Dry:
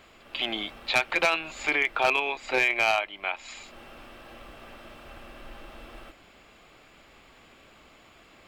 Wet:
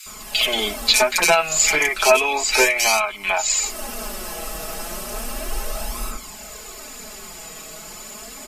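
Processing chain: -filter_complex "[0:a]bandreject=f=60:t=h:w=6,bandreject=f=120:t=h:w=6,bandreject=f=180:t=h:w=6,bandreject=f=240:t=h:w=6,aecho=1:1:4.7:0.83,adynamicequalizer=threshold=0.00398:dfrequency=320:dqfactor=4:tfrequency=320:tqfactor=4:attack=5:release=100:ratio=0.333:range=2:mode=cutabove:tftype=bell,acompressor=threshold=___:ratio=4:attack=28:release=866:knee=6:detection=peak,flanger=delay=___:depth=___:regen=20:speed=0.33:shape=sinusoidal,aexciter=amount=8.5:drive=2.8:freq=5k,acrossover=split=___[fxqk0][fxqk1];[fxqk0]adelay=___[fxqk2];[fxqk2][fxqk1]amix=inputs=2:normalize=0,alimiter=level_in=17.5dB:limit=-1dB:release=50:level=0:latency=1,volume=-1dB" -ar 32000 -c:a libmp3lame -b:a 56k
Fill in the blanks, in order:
-26dB, 0.8, 5.5, 2000, 60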